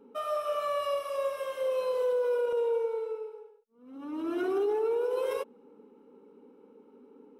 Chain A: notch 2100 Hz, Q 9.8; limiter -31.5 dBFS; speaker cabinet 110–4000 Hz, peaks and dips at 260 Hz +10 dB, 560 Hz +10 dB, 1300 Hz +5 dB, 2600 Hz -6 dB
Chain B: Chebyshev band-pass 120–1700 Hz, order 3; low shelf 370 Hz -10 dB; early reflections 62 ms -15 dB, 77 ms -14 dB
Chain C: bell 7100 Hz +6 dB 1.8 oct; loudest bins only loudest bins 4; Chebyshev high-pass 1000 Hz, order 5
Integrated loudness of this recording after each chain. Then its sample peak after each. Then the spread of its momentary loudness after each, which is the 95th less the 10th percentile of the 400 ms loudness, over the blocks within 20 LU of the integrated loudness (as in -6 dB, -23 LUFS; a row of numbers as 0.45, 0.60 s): -32.5, -34.0, -41.0 LUFS; -22.0, -23.0, -28.0 dBFS; 21, 11, 23 LU